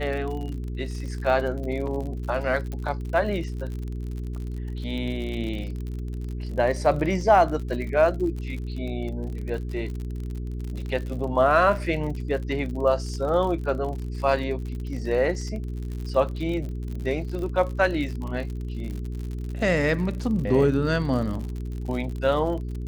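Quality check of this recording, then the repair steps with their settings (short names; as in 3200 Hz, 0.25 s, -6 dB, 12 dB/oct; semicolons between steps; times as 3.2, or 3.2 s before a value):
crackle 57/s -32 dBFS
hum 60 Hz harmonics 7 -31 dBFS
2.72 pop -21 dBFS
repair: de-click; de-hum 60 Hz, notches 7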